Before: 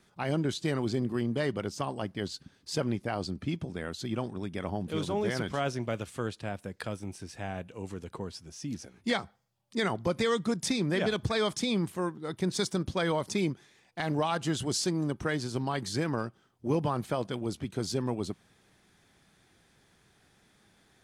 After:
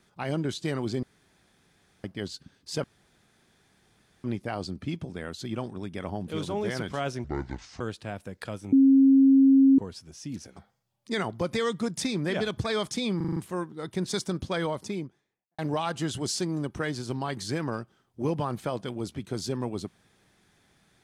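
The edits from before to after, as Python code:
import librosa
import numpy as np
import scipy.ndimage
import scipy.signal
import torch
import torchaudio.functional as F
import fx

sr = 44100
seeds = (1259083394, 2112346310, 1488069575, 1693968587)

y = fx.studio_fade_out(x, sr, start_s=12.97, length_s=1.07)
y = fx.edit(y, sr, fx.room_tone_fill(start_s=1.03, length_s=1.01),
    fx.insert_room_tone(at_s=2.84, length_s=1.4),
    fx.speed_span(start_s=5.84, length_s=0.35, speed=0.62),
    fx.bleep(start_s=7.11, length_s=1.06, hz=270.0, db=-14.0),
    fx.cut(start_s=8.95, length_s=0.27),
    fx.stutter(start_s=11.82, slice_s=0.04, count=6), tone=tone)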